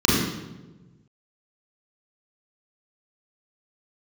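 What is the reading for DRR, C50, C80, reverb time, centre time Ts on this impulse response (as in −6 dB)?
−6.5 dB, −1.5 dB, 2.0 dB, 1.2 s, 84 ms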